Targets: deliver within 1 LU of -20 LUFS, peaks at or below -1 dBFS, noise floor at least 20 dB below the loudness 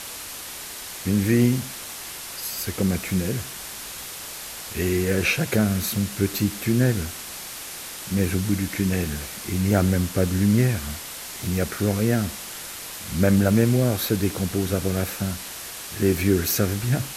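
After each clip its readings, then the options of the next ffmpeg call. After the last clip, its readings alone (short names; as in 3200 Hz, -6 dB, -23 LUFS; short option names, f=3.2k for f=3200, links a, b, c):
noise floor -36 dBFS; noise floor target -44 dBFS; loudness -24.0 LUFS; peak -5.5 dBFS; loudness target -20.0 LUFS
-> -af "afftdn=nr=8:nf=-36"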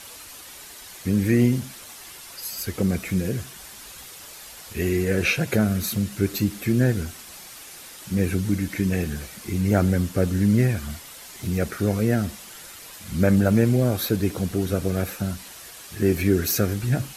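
noise floor -42 dBFS; noise floor target -44 dBFS
-> -af "afftdn=nr=6:nf=-42"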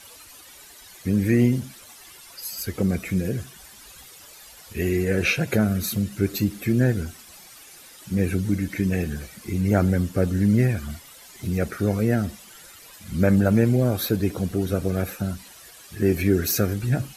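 noise floor -47 dBFS; loudness -23.5 LUFS; peak -6.0 dBFS; loudness target -20.0 LUFS
-> -af "volume=3.5dB"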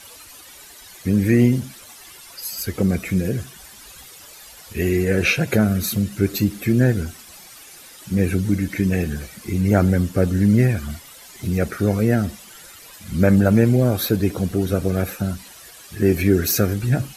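loudness -20.0 LUFS; peak -2.5 dBFS; noise floor -43 dBFS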